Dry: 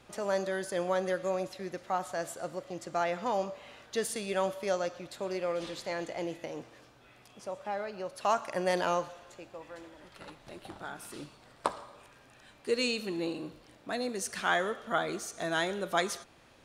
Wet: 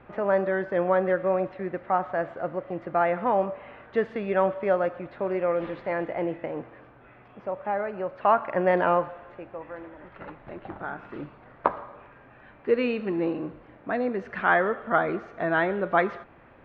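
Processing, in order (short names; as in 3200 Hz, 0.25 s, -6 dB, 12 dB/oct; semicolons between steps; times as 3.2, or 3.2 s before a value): LPF 2100 Hz 24 dB/oct; gain +7.5 dB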